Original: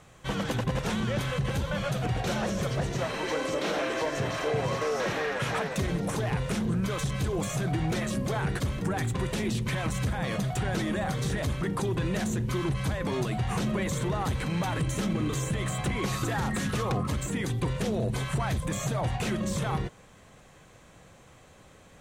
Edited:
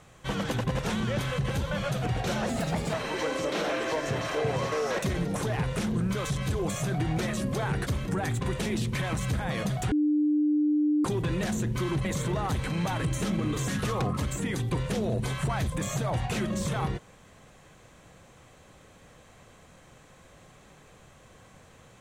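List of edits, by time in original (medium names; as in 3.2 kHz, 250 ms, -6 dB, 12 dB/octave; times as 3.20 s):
2.49–3.03 s: speed 121%
5.08–5.72 s: delete
10.65–11.78 s: bleep 299 Hz -21 dBFS
12.78–13.81 s: delete
15.44–16.58 s: delete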